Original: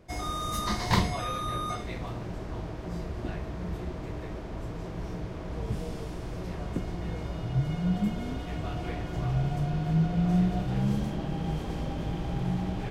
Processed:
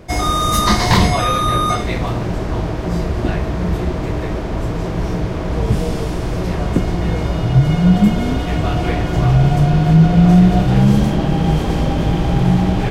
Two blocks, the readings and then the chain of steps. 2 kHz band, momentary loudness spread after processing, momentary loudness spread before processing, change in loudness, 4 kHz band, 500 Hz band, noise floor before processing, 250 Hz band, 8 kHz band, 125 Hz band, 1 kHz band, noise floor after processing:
+15.0 dB, 10 LU, 11 LU, +15.5 dB, +15.0 dB, +16.0 dB, −38 dBFS, +15.5 dB, +15.5 dB, +15.5 dB, +15.5 dB, −22 dBFS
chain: boost into a limiter +17 dB
level −1 dB

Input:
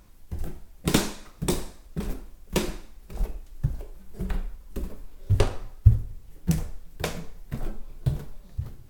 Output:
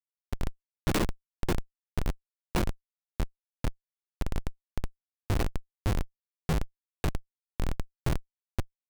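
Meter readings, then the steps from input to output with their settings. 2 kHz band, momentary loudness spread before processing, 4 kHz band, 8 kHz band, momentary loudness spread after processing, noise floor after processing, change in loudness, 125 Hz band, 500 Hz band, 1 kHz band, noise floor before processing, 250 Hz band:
−1.5 dB, 16 LU, −6.0 dB, −8.0 dB, 12 LU, below −85 dBFS, −5.5 dB, −7.0 dB, −4.0 dB, −0.5 dB, −50 dBFS, −4.0 dB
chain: low-pass that shuts in the quiet parts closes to 1,400 Hz, open at −17.5 dBFS
comparator with hysteresis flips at −24.5 dBFS
level +3 dB

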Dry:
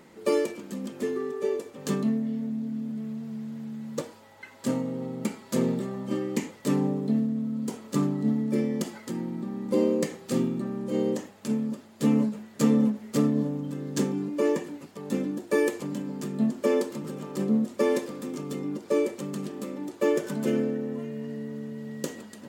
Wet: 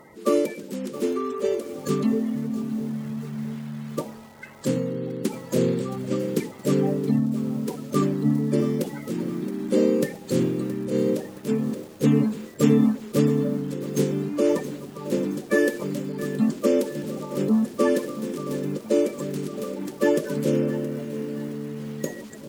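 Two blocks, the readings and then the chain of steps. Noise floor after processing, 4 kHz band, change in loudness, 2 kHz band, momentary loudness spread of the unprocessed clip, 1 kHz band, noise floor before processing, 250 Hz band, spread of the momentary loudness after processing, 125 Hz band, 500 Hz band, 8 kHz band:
−42 dBFS, +3.0 dB, +3.5 dB, +4.0 dB, 11 LU, +3.0 dB, −51 dBFS, +3.0 dB, 10 LU, +5.5 dB, +4.0 dB, +2.5 dB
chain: spectral magnitudes quantised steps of 30 dB
feedback echo at a low word length 671 ms, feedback 55%, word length 7 bits, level −14 dB
level +4 dB

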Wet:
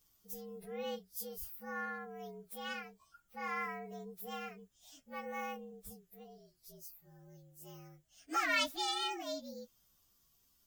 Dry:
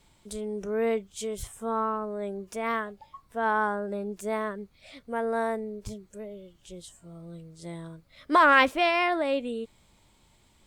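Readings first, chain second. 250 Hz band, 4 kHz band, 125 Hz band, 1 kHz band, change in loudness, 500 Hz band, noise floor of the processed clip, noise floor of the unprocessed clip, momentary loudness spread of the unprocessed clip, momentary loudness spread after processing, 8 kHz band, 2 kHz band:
−15.0 dB, −3.5 dB, −13.0 dB, −14.5 dB, −12.5 dB, −16.5 dB, −73 dBFS, −63 dBFS, 23 LU, 23 LU, −4.0 dB, −12.5 dB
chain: partials spread apart or drawn together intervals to 117%
first-order pre-emphasis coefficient 0.8

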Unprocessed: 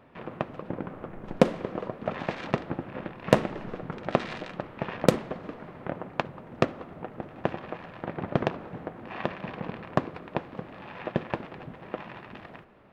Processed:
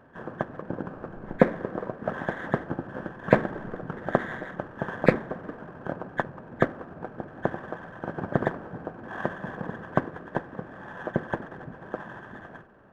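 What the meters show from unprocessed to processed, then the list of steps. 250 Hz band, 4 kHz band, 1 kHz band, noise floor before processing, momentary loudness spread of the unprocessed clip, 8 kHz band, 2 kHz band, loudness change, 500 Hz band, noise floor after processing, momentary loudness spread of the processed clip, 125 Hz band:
+1.0 dB, −9.5 dB, +1.0 dB, −48 dBFS, 16 LU, below −10 dB, +4.0 dB, +1.0 dB, +1.0 dB, −46 dBFS, 16 LU, +1.0 dB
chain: hearing-aid frequency compression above 1,500 Hz 4 to 1
windowed peak hold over 3 samples
level +1 dB

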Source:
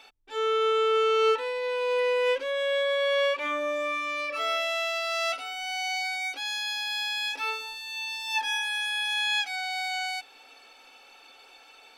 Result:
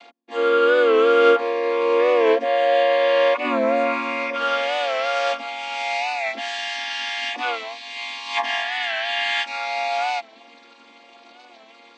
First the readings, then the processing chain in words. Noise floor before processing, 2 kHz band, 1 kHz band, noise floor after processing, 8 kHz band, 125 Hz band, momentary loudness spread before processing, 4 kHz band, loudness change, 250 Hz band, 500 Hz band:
−54 dBFS, +4.5 dB, +8.0 dB, −49 dBFS, −2.0 dB, can't be measured, 7 LU, +1.5 dB, +6.5 dB, +19.0 dB, +8.5 dB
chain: channel vocoder with a chord as carrier minor triad, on A#3
wow of a warped record 45 rpm, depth 100 cents
level +8.5 dB

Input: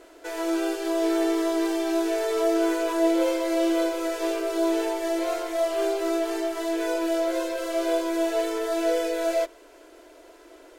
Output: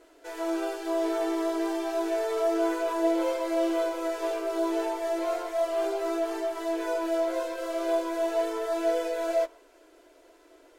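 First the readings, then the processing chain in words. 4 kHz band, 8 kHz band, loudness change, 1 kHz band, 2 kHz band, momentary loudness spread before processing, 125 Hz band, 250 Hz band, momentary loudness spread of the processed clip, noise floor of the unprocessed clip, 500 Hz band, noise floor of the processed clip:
−6.5 dB, −7.0 dB, −3.5 dB, −1.0 dB, −4.5 dB, 5 LU, can't be measured, −5.5 dB, 5 LU, −51 dBFS, −2.5 dB, −57 dBFS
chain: flanger 0.32 Hz, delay 6.1 ms, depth 9.9 ms, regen −47%
dynamic equaliser 900 Hz, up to +7 dB, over −42 dBFS, Q 0.93
level −3 dB

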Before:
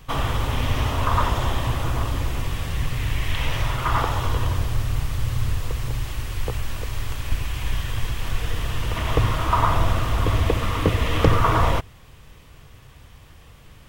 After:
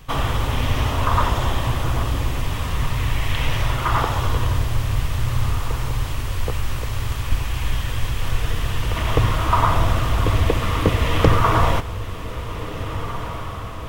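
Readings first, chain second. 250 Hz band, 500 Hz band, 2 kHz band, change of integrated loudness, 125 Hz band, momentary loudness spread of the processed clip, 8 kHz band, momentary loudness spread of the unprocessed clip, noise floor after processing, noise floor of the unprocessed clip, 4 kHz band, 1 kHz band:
+2.5 dB, +2.5 dB, +2.5 dB, +2.0 dB, +2.5 dB, 10 LU, +2.5 dB, 9 LU, −29 dBFS, −47 dBFS, +2.5 dB, +2.5 dB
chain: feedback delay with all-pass diffusion 1,713 ms, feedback 61%, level −11.5 dB
level +2 dB

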